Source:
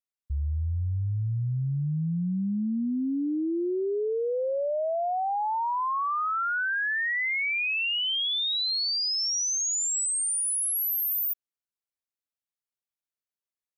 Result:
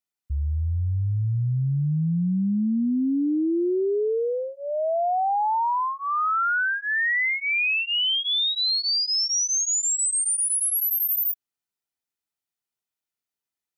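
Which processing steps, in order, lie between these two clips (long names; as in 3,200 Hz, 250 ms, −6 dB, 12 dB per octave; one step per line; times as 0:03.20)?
notch comb filter 550 Hz
level +5 dB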